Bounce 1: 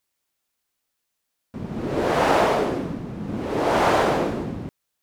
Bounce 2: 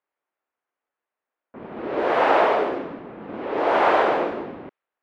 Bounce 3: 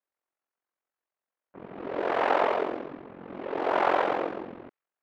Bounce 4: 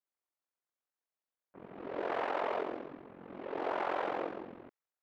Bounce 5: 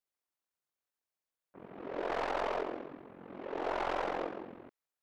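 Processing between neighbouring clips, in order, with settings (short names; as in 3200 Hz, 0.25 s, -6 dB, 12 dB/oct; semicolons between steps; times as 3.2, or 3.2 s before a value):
low-pass opened by the level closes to 1600 Hz, open at -18 dBFS; three-band isolator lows -20 dB, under 310 Hz, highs -23 dB, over 3400 Hz; gain +2 dB
ring modulator 22 Hz; gain -3.5 dB
limiter -17.5 dBFS, peak gain reduction 6 dB; gain -7 dB
tracing distortion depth 0.1 ms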